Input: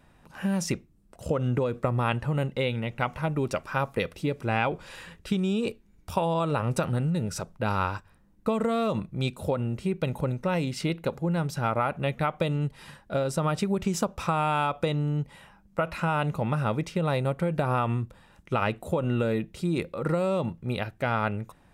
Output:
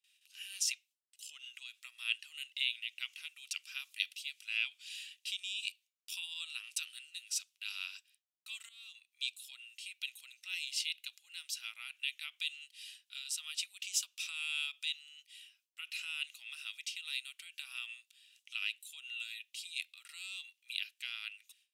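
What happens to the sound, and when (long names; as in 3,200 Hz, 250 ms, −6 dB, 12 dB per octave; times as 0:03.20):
0:08.69–0:09.49: fade in, from −19.5 dB
whole clip: noise gate with hold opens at −48 dBFS; Chebyshev high-pass filter 2,800 Hz, order 4; high-shelf EQ 3,400 Hz −7 dB; level +7.5 dB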